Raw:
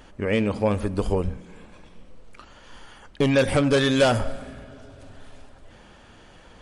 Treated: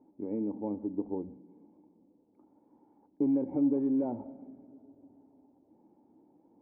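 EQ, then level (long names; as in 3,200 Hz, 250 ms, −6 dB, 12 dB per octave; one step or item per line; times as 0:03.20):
formant resonators in series u
high-pass filter 200 Hz 12 dB per octave
high-shelf EQ 2,600 Hz −11 dB
0.0 dB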